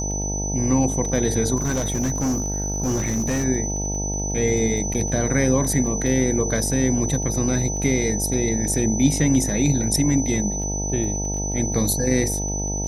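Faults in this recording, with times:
buzz 50 Hz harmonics 18 -27 dBFS
crackle 14/s -31 dBFS
tone 6000 Hz -27 dBFS
1.56–3.44 clipped -18.5 dBFS
4.94–4.95 gap 7.5 ms

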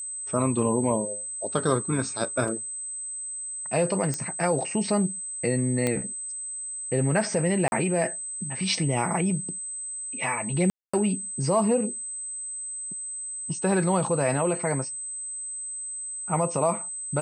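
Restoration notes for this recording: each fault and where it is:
tone 8200 Hz -32 dBFS
2.48 gap 3.1 ms
4.14 pop -15 dBFS
5.87 pop -12 dBFS
7.68–7.72 gap 41 ms
10.7–10.94 gap 0.235 s

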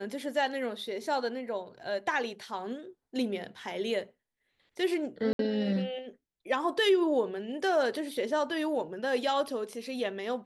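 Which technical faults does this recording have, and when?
5.33–5.39 gap 62 ms

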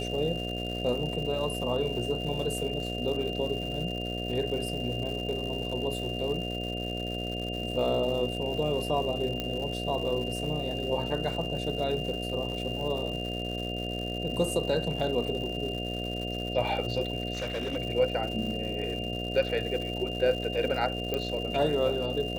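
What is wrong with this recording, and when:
buzz 60 Hz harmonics 12 -35 dBFS
crackle 260/s -37 dBFS
tone 2800 Hz -36 dBFS
9.4 pop -17 dBFS
17.33–17.77 clipped -28 dBFS
21.14 pop -16 dBFS

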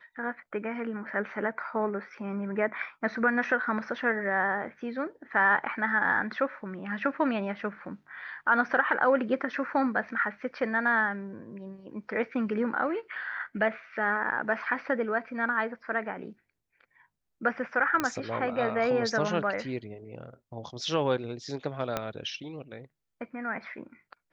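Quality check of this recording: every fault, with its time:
18 pop -13 dBFS
21.97 pop -14 dBFS

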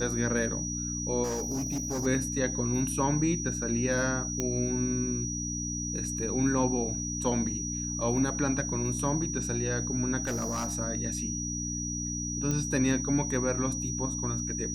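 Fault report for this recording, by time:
hum 60 Hz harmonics 5 -36 dBFS
tone 5800 Hz -34 dBFS
1.23–2.07 clipped -28 dBFS
4.4 pop -15 dBFS
10.23–10.72 clipped -27 dBFS
12.51 pop -18 dBFS

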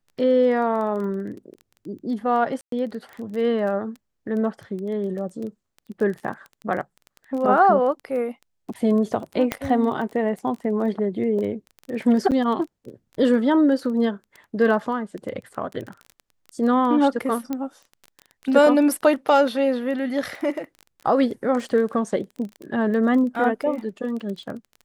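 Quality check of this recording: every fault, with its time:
crackle 15/s -30 dBFS
2.61–2.72 gap 0.113 s
9.52 pop -8 dBFS
12.31–12.32 gap 8.1 ms
17.53 pop -14 dBFS

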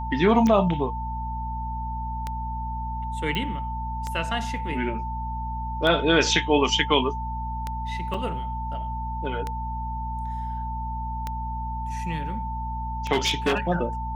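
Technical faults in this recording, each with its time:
hum 60 Hz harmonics 4 -32 dBFS
tick 33 1/3 rpm -15 dBFS
tone 890 Hz -31 dBFS
3.35 pop -15 dBFS
8.14 gap 3.6 ms
13.12–13.58 clipped -17 dBFS

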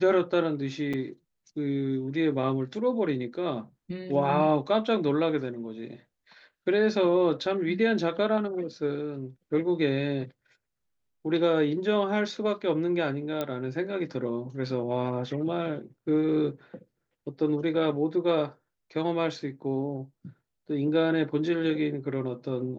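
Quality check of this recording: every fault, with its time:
0.93–0.94 gap 5.7 ms
13.41 pop -16 dBFS

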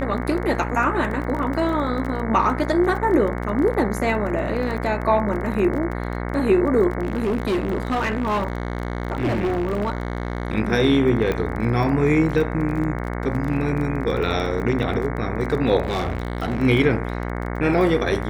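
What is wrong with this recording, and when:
buzz 60 Hz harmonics 37 -27 dBFS
crackle 22/s -28 dBFS
7.02–10.55 clipped -18 dBFS
11.32 pop -11 dBFS
15.83–16.62 clipped -19 dBFS

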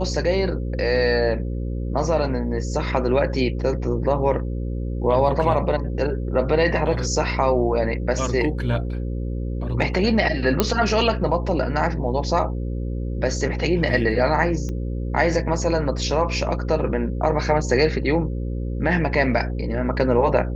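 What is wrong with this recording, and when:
buzz 60 Hz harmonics 9 -26 dBFS
10.6 pop -3 dBFS
14.69 pop -19 dBFS

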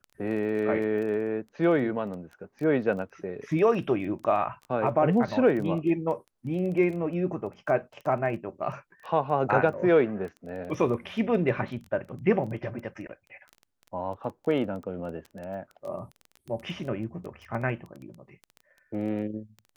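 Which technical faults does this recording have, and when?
crackle 12/s -35 dBFS

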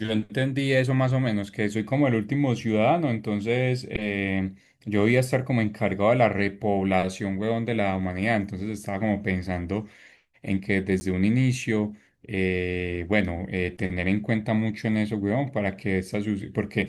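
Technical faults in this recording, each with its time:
11–11.01 gap 10 ms

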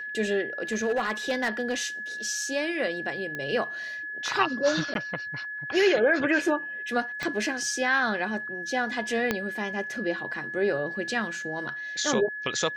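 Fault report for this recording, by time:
tone 1700 Hz -33 dBFS
0.63–1.74 clipped -21 dBFS
3.35 pop -21 dBFS
4.94–4.95 gap 12 ms
7.23 pop -17 dBFS
9.31 pop -10 dBFS

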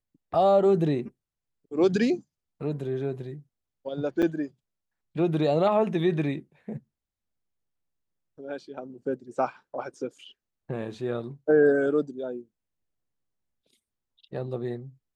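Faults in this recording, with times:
4.22–4.23 gap 6.5 ms

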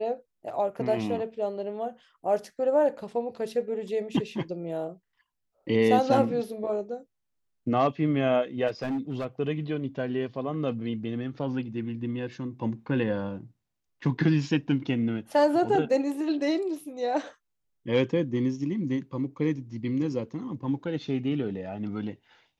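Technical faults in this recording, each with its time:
8.67–9.26 clipped -26 dBFS

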